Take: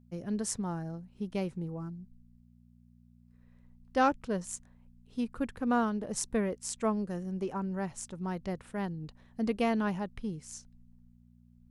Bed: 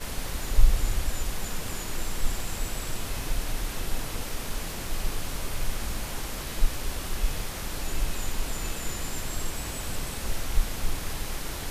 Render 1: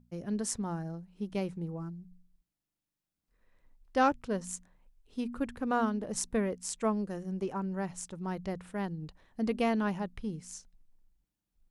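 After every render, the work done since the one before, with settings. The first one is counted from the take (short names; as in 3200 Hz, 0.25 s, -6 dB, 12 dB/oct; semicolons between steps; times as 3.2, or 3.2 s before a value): de-hum 60 Hz, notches 4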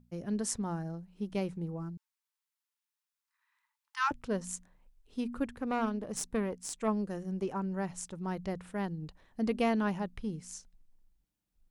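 1.97–4.11 brick-wall FIR high-pass 830 Hz; 5.46–6.88 tube stage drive 21 dB, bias 0.55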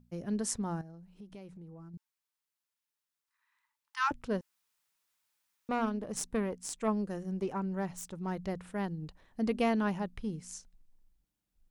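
0.81–1.94 compressor 4:1, threshold -48 dBFS; 4.41–5.69 room tone; 7.34–8.49 self-modulated delay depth 0.052 ms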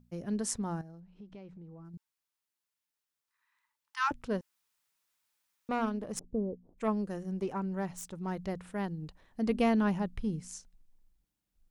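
1–1.85 air absorption 140 m; 6.19–6.78 inverse Chebyshev low-pass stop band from 3300 Hz, stop band 80 dB; 9.49–10.48 low shelf 220 Hz +6.5 dB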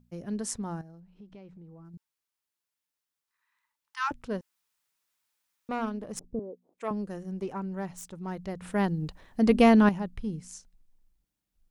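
6.39–6.91 HPF 380 Hz; 8.62–9.89 gain +8.5 dB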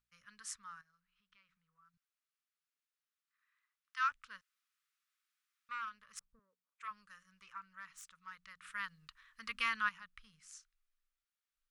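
elliptic high-pass 1200 Hz, stop band 40 dB; tilt -3 dB/oct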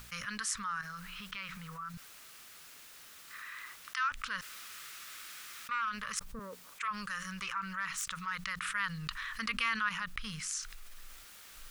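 fast leveller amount 70%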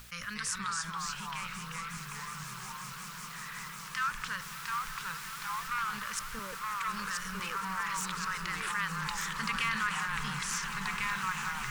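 swelling echo 0.182 s, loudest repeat 8, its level -15.5 dB; echoes that change speed 0.222 s, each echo -2 st, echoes 2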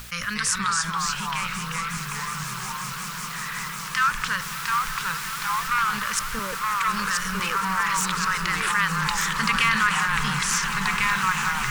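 gain +11 dB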